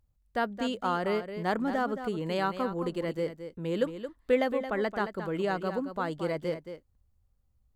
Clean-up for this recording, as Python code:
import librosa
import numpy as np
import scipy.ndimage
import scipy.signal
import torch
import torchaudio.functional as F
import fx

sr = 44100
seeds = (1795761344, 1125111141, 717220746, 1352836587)

y = fx.fix_echo_inverse(x, sr, delay_ms=222, level_db=-10.0)